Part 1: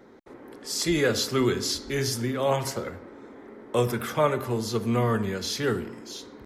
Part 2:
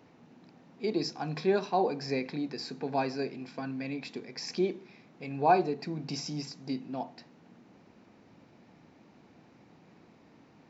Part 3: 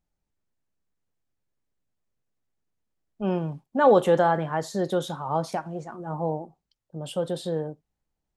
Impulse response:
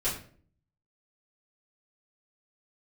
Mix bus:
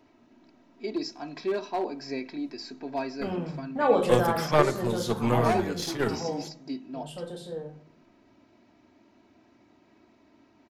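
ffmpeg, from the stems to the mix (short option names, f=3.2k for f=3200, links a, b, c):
-filter_complex "[0:a]aeval=exprs='0.316*(cos(1*acos(clip(val(0)/0.316,-1,1)))-cos(1*PI/2))+0.126*(cos(2*acos(clip(val(0)/0.316,-1,1)))-cos(2*PI/2))+0.0178*(cos(7*acos(clip(val(0)/0.316,-1,1)))-cos(7*PI/2))':c=same,adelay=350,volume=0dB[a];[1:a]aecho=1:1:3.1:0.73,asoftclip=type=hard:threshold=-19dB,volume=-3.5dB[b];[2:a]equalizer=f=270:w=0.39:g=-4.5,dynaudnorm=f=370:g=11:m=6dB,volume=-13dB,asplit=3[c][d][e];[d]volume=-5dB[f];[e]apad=whole_len=299976[g];[a][g]sidechaingate=range=-49dB:threshold=-49dB:ratio=16:detection=peak[h];[3:a]atrim=start_sample=2205[i];[f][i]afir=irnorm=-1:irlink=0[j];[h][b][c][j]amix=inputs=4:normalize=0"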